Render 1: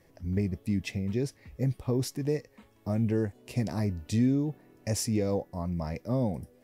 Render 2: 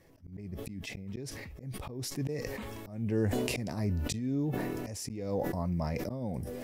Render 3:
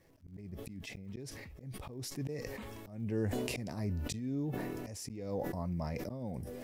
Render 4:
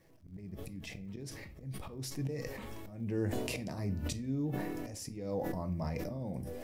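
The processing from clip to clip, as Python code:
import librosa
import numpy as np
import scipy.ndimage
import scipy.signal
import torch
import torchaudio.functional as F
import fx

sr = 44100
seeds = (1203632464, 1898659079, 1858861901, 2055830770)

y1 = fx.auto_swell(x, sr, attack_ms=391.0)
y1 = fx.sustainer(y1, sr, db_per_s=20.0)
y2 = fx.dmg_crackle(y1, sr, seeds[0], per_s=100.0, level_db=-56.0)
y2 = F.gain(torch.from_numpy(y2), -4.5).numpy()
y3 = fx.room_shoebox(y2, sr, seeds[1], volume_m3=300.0, walls='furnished', distance_m=0.59)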